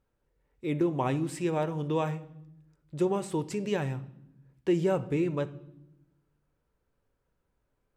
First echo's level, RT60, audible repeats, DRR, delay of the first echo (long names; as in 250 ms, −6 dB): no echo audible, 0.80 s, no echo audible, 10.5 dB, no echo audible